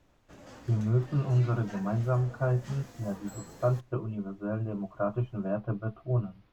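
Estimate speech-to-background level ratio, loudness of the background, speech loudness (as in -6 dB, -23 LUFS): 17.5 dB, -48.5 LUFS, -31.0 LUFS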